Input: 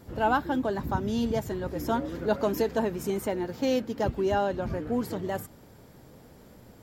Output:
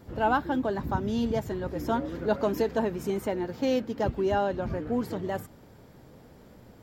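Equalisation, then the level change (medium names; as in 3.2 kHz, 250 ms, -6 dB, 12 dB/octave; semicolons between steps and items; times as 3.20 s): peaking EQ 11 kHz -6.5 dB 1.6 oct; 0.0 dB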